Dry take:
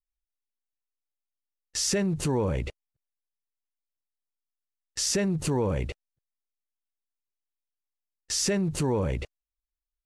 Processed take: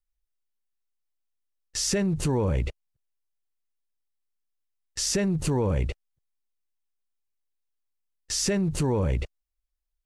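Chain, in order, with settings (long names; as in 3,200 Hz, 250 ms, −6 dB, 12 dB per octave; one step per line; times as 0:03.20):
low-shelf EQ 79 Hz +10 dB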